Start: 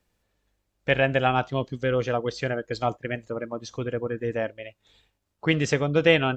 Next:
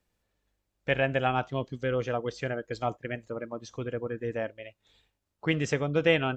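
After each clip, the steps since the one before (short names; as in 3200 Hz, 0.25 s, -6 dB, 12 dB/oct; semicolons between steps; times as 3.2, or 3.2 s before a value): dynamic EQ 4300 Hz, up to -5 dB, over -49 dBFS, Q 2.6; gain -4.5 dB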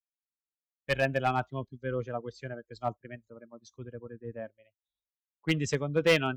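per-bin expansion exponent 1.5; hard clip -20.5 dBFS, distortion -14 dB; three-band expander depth 70%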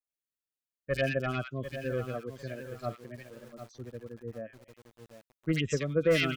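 Butterworth band-stop 870 Hz, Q 1.8; three bands offset in time lows, highs, mids 40/80 ms, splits 1700/5400 Hz; lo-fi delay 0.746 s, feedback 35%, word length 8-bit, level -10 dB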